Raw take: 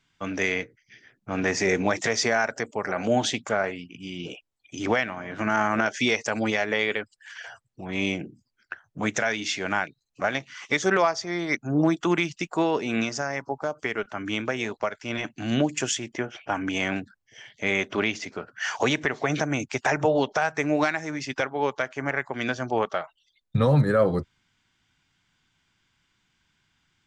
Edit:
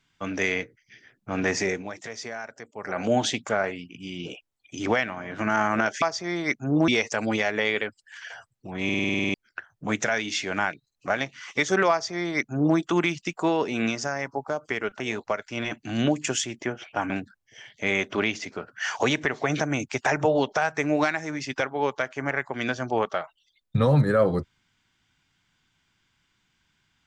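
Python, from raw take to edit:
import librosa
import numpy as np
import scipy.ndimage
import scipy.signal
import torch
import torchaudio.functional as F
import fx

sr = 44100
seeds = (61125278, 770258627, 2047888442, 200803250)

y = fx.edit(x, sr, fx.fade_down_up(start_s=1.57, length_s=1.43, db=-12.5, fade_s=0.26),
    fx.stutter_over(start_s=7.98, slice_s=0.05, count=10),
    fx.duplicate(start_s=11.05, length_s=0.86, to_s=6.02),
    fx.cut(start_s=14.14, length_s=0.39),
    fx.cut(start_s=16.63, length_s=0.27), tone=tone)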